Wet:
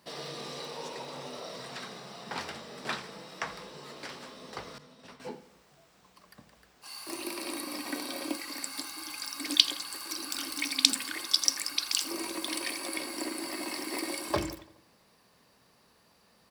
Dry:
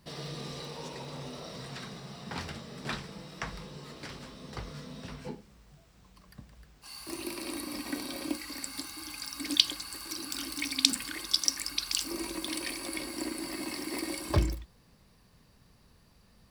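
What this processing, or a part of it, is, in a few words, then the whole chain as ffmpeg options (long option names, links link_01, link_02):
filter by subtraction: -filter_complex "[0:a]asplit=2[link_01][link_02];[link_02]lowpass=610,volume=-1[link_03];[link_01][link_03]amix=inputs=2:normalize=0,asettb=1/sr,asplit=3[link_04][link_05][link_06];[link_04]atrim=end=4.784[link_07];[link_05]atrim=start=4.78:end=5.2,asetpts=PTS-STARTPTS,afade=type=in:duration=0.004:curve=qsin,afade=type=out:start_time=0.416:duration=0.004:curve=qsin,agate=range=-33dB:threshold=-39dB:ratio=3:detection=peak[link_08];[link_06]atrim=start=5.196[link_09];[link_07][link_08]acrossfade=duration=0.004:curve1=hsin:curve2=qsin[link_10];[link_10][link_09]acrossfade=duration=0.004:curve1=qsin:curve2=hsin,bandreject=frequency=50:width_type=h:width=6,bandreject=frequency=100:width_type=h:width=6,bandreject=frequency=150:width_type=h:width=6,asplit=2[link_11][link_12];[link_12]adelay=84,lowpass=frequency=4400:poles=1,volume=-16.5dB,asplit=2[link_13][link_14];[link_14]adelay=84,lowpass=frequency=4400:poles=1,volume=0.53,asplit=2[link_15][link_16];[link_16]adelay=84,lowpass=frequency=4400:poles=1,volume=0.53,asplit=2[link_17][link_18];[link_18]adelay=84,lowpass=frequency=4400:poles=1,volume=0.53,asplit=2[link_19][link_20];[link_20]adelay=84,lowpass=frequency=4400:poles=1,volume=0.53[link_21];[link_11][link_13][link_15][link_17][link_19][link_21]amix=inputs=6:normalize=0,volume=1.5dB"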